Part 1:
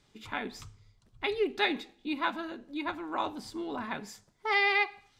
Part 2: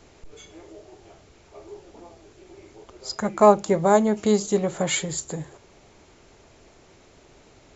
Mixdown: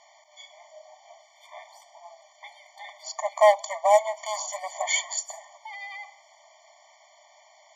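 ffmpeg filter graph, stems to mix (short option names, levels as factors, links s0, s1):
-filter_complex "[0:a]alimiter=level_in=1.26:limit=0.0631:level=0:latency=1:release=72,volume=0.794,adelay=1200,volume=0.708[s0];[1:a]equalizer=f=200:w=3.4:g=5,aeval=exprs='0.841*(cos(1*acos(clip(val(0)/0.841,-1,1)))-cos(1*PI/2))+0.00944*(cos(5*acos(clip(val(0)/0.841,-1,1)))-cos(5*PI/2))':c=same,volume=1.33[s1];[s0][s1]amix=inputs=2:normalize=0,asoftclip=type=hard:threshold=0.335,afftfilt=real='re*eq(mod(floor(b*sr/1024/600),2),1)':imag='im*eq(mod(floor(b*sr/1024/600),2),1)':win_size=1024:overlap=0.75"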